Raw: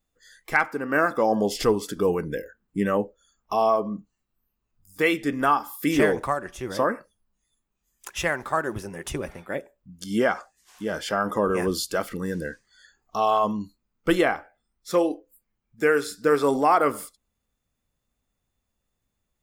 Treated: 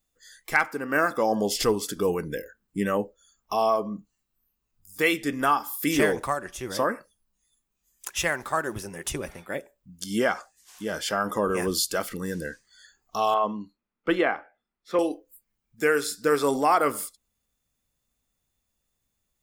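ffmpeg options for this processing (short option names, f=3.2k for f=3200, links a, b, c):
-filter_complex "[0:a]asettb=1/sr,asplit=3[a][b][c];[a]atrim=end=13.344[d];[b]atrim=start=13.34:end=14.99,asetpts=PTS-STARTPTS,afade=t=in:d=0.004:c=qsin,afade=t=out:st=1.646:d=0.004:c=qsin,acrossover=split=180 3200:gain=0.224 1 0.0708[e][f][g];[e][f][g]amix=inputs=3:normalize=0[h];[c]atrim=start=14.986[i];[d][h]acrossfade=d=0.004:c1=hsin:c2=qsin[j];[j][i]acrossfade=d=0.004:c1=qsin:c2=hsin,highshelf=f=3.1k:g=8.5,volume=-2.5dB"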